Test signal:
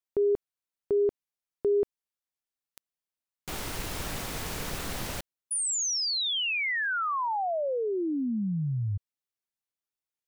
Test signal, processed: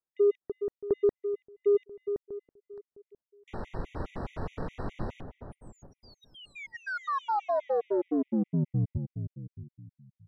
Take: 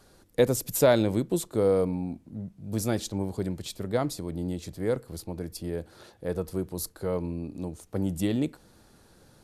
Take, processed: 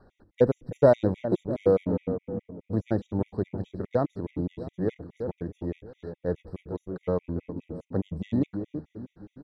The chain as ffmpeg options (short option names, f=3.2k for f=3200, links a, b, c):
-filter_complex "[0:a]acrossover=split=1300[a][b];[b]acompressor=threshold=-45dB:ratio=5:attack=0.71:release=45:detection=rms[c];[a][c]amix=inputs=2:normalize=0,asplit=2[d][e];[e]adelay=329,lowpass=f=1.4k:p=1,volume=-8dB,asplit=2[f][g];[g]adelay=329,lowpass=f=1.4k:p=1,volume=0.47,asplit=2[h][i];[i]adelay=329,lowpass=f=1.4k:p=1,volume=0.47,asplit=2[j][k];[k]adelay=329,lowpass=f=1.4k:p=1,volume=0.47,asplit=2[l][m];[m]adelay=329,lowpass=f=1.4k:p=1,volume=0.47[n];[d][f][h][j][l][n]amix=inputs=6:normalize=0,adynamicsmooth=sensitivity=4.5:basefreq=1.6k,afftfilt=real='re*gt(sin(2*PI*4.8*pts/sr)*(1-2*mod(floor(b*sr/1024/1900),2)),0)':imag='im*gt(sin(2*PI*4.8*pts/sr)*(1-2*mod(floor(b*sr/1024/1900),2)),0)':win_size=1024:overlap=0.75,volume=3dB"